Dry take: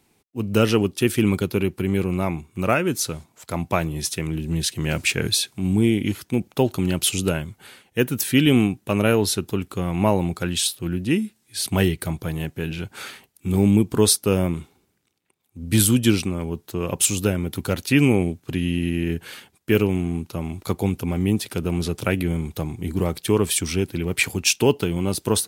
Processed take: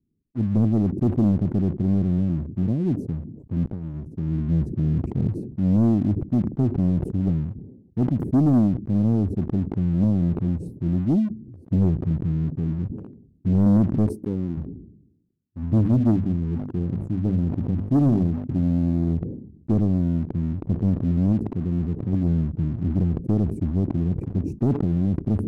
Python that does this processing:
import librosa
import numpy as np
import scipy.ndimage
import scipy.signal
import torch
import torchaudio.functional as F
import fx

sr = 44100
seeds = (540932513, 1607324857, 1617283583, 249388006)

y = fx.bass_treble(x, sr, bass_db=-11, treble_db=6, at=(14.06, 14.57))
y = fx.hum_notches(y, sr, base_hz=50, count=5, at=(15.74, 18.71))
y = fx.low_shelf(y, sr, hz=390.0, db=-4.0, at=(21.32, 22.13))
y = fx.edit(y, sr, fx.fade_in_from(start_s=3.66, length_s=0.84, floor_db=-18.0), tone=tone)
y = scipy.signal.sosfilt(scipy.signal.cheby2(4, 70, 1300.0, 'lowpass', fs=sr, output='sos'), y)
y = fx.leveller(y, sr, passes=2)
y = fx.sustainer(y, sr, db_per_s=66.0)
y = F.gain(torch.from_numpy(y), -3.0).numpy()